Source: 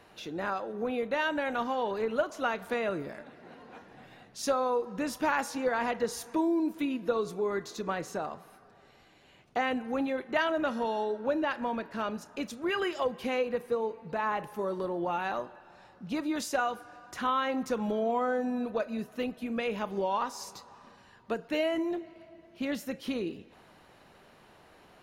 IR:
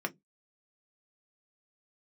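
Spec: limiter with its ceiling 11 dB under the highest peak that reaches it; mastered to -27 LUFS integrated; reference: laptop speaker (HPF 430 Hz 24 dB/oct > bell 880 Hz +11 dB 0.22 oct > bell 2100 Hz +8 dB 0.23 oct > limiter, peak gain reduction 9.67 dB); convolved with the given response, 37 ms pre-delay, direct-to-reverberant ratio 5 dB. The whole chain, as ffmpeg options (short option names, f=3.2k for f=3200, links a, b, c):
-filter_complex "[0:a]alimiter=level_in=2.5dB:limit=-24dB:level=0:latency=1,volume=-2.5dB,asplit=2[a][b];[1:a]atrim=start_sample=2205,adelay=37[c];[b][c]afir=irnorm=-1:irlink=0,volume=-9.5dB[d];[a][d]amix=inputs=2:normalize=0,highpass=f=430:w=0.5412,highpass=f=430:w=1.3066,equalizer=f=880:t=o:w=0.22:g=11,equalizer=f=2.1k:t=o:w=0.23:g=8,volume=11dB,alimiter=limit=-17dB:level=0:latency=1"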